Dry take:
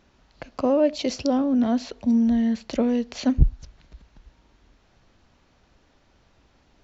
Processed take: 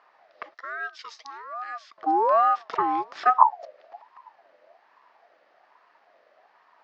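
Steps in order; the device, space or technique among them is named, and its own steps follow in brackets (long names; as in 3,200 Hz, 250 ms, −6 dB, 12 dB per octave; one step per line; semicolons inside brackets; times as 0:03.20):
voice changer toy (ring modulator whose carrier an LFO sweeps 780 Hz, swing 30%, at 1.2 Hz; loudspeaker in its box 400–4,600 Hz, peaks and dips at 660 Hz +6 dB, 1,200 Hz +5 dB, 1,800 Hz +8 dB, 3,500 Hz −5 dB)
0:00.54–0:01.98: first difference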